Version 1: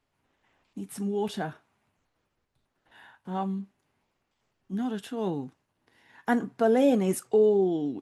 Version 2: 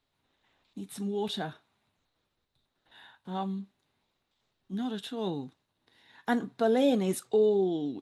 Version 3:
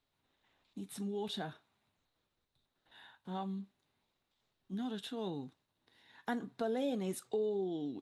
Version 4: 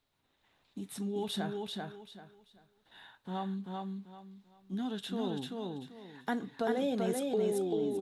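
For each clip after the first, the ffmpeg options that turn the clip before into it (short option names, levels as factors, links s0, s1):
-af "equalizer=f=3800:t=o:w=0.37:g=13,volume=0.708"
-af "acompressor=threshold=0.0224:ratio=2,volume=0.631"
-af "aecho=1:1:389|778|1167|1556:0.708|0.184|0.0479|0.0124,volume=1.41"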